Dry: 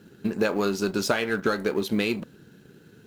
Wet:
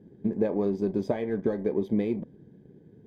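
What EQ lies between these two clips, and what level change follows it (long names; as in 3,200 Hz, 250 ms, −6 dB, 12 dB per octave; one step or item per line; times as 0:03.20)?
moving average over 32 samples
0.0 dB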